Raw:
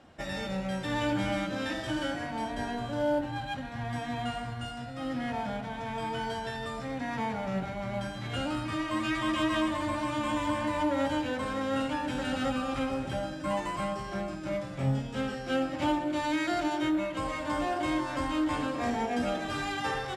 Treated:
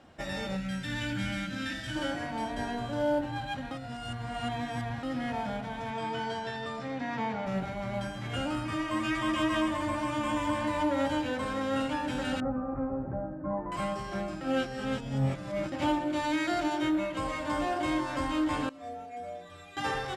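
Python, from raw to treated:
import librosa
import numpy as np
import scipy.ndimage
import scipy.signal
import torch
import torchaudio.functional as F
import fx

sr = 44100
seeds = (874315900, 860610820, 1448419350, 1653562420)

y = fx.spec_box(x, sr, start_s=0.56, length_s=1.4, low_hz=290.0, high_hz=1300.0, gain_db=-12)
y = fx.bandpass_edges(y, sr, low_hz=110.0, high_hz=fx.line((5.9, 8000.0), (7.45, 5100.0)), at=(5.9, 7.45), fade=0.02)
y = fx.peak_eq(y, sr, hz=4000.0, db=-7.0, octaves=0.24, at=(8.05, 10.53))
y = fx.gaussian_blur(y, sr, sigma=7.5, at=(12.4, 13.72))
y = fx.stiff_resonator(y, sr, f0_hz=87.0, decay_s=0.8, stiffness=0.008, at=(18.69, 19.77))
y = fx.edit(y, sr, fx.reverse_span(start_s=3.71, length_s=1.32),
    fx.reverse_span(start_s=14.41, length_s=1.31), tone=tone)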